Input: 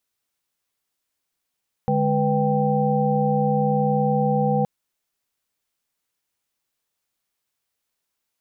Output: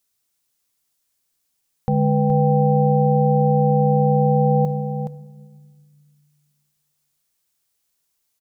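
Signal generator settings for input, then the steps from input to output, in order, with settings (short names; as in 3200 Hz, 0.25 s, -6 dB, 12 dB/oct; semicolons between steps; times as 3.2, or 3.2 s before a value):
chord D3/G#3/B4/G5 sine, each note -23 dBFS 2.77 s
tone controls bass +4 dB, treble +8 dB; on a send: echo 0.421 s -8.5 dB; on the sum: shoebox room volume 1100 m³, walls mixed, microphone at 0.3 m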